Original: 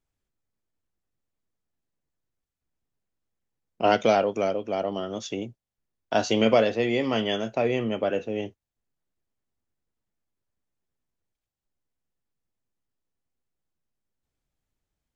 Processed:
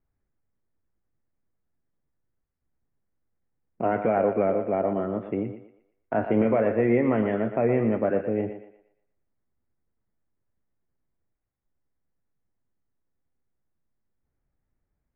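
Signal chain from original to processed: limiter -15.5 dBFS, peak gain reduction 8 dB; steep low-pass 2200 Hz 48 dB/oct; low shelf 420 Hz +6 dB; on a send: thinning echo 0.118 s, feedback 39%, high-pass 330 Hz, level -8 dB

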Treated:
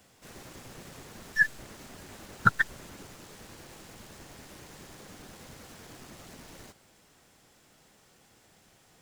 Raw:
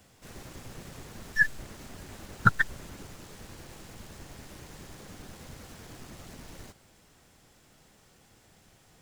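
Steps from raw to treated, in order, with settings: low shelf 120 Hz -9 dB

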